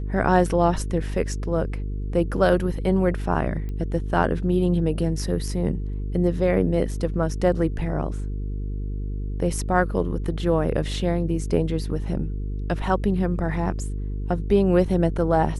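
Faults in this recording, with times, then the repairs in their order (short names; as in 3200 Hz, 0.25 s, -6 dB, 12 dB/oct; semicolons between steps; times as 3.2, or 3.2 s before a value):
buzz 50 Hz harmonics 9 -28 dBFS
3.69 pop -23 dBFS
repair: de-click; de-hum 50 Hz, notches 9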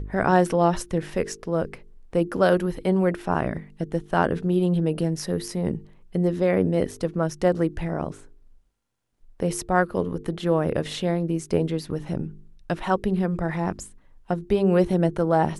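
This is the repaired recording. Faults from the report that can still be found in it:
3.69 pop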